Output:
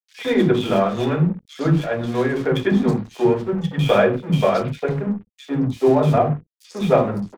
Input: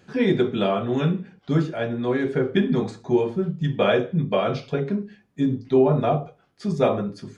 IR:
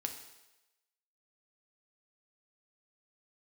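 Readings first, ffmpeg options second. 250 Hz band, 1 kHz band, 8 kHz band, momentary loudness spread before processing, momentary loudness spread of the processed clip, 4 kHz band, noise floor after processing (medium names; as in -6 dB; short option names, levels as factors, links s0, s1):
+3.0 dB, +5.0 dB, no reading, 8 LU, 8 LU, +3.0 dB, -65 dBFS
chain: -filter_complex "[0:a]aeval=exprs='val(0)+0.00631*sin(2*PI*490*n/s)':c=same,aeval=exprs='sgn(val(0))*max(abs(val(0))-0.0133,0)':c=same,acrossover=split=300|2600[s0][s1][s2];[s1]adelay=100[s3];[s0]adelay=160[s4];[s4][s3][s2]amix=inputs=3:normalize=0,volume=2"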